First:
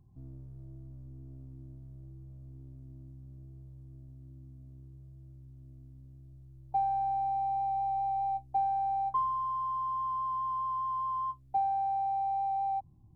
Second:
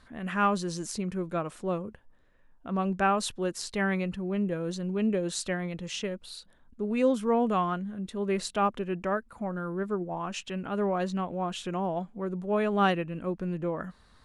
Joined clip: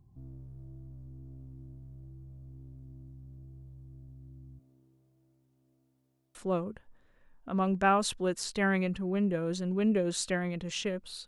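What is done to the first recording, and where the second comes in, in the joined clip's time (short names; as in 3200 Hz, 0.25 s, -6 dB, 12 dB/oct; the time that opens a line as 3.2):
first
4.58–6.35 HPF 290 Hz -> 630 Hz
6.35 switch to second from 1.53 s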